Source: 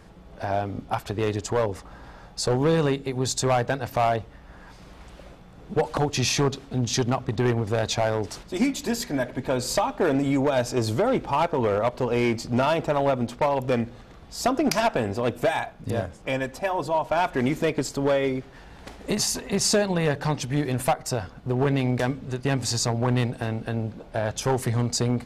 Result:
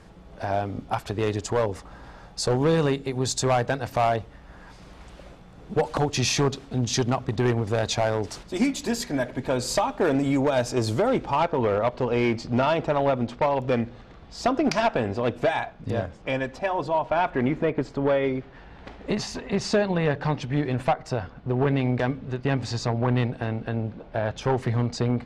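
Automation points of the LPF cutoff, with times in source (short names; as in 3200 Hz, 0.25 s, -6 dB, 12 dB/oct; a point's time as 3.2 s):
11.08 s 11000 Hz
11.51 s 4800 Hz
16.82 s 4800 Hz
17.67 s 1900 Hz
18.34 s 3400 Hz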